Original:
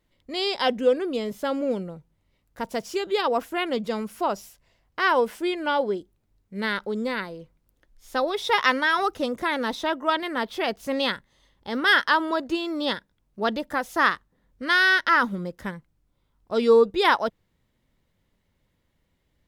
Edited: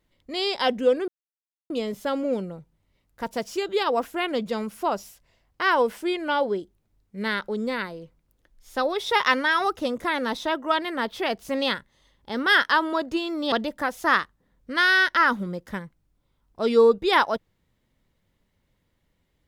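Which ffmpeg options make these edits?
ffmpeg -i in.wav -filter_complex "[0:a]asplit=3[link_01][link_02][link_03];[link_01]atrim=end=1.08,asetpts=PTS-STARTPTS,afade=type=out:start_time=1.076:duration=0.004:curve=hsin,apad=pad_dur=0.62[link_04];[link_02]atrim=start=1.08:end=12.902,asetpts=PTS-STARTPTS,afade=type=in:duration=0.004:curve=hsin[link_05];[link_03]atrim=start=13.438[link_06];[link_04][link_05]concat=n=2:v=0:a=1[link_07];[link_07][link_06]acrossfade=duration=0.004:curve1=hsin:curve2=hsin" out.wav

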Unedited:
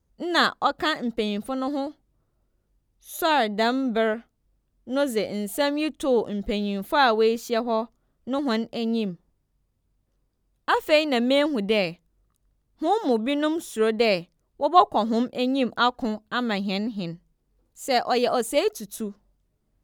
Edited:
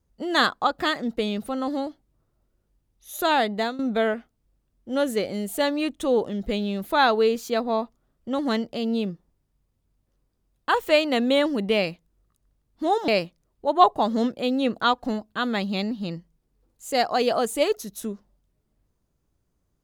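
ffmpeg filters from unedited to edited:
ffmpeg -i in.wav -filter_complex "[0:a]asplit=3[link_01][link_02][link_03];[link_01]atrim=end=3.79,asetpts=PTS-STARTPTS,afade=type=out:start_time=3.53:duration=0.26:silence=0.16788[link_04];[link_02]atrim=start=3.79:end=13.082,asetpts=PTS-STARTPTS,afade=type=in:duration=0.004:curve=hsin:silence=0.16788[link_05];[link_03]atrim=start=14.038[link_06];[link_04][link_05]concat=n=2:v=0:a=1[link_07];[link_07][link_06]acrossfade=duration=0.004:curve1=hsin:curve2=hsin" out.wav

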